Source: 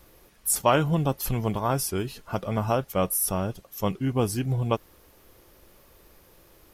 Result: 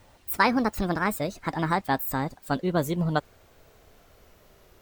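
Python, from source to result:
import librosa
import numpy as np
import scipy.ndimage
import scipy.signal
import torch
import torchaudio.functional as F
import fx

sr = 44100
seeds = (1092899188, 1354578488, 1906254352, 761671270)

y = fx.speed_glide(x, sr, from_pct=167, to_pct=113)
y = fx.high_shelf(y, sr, hz=8400.0, db=-6.5)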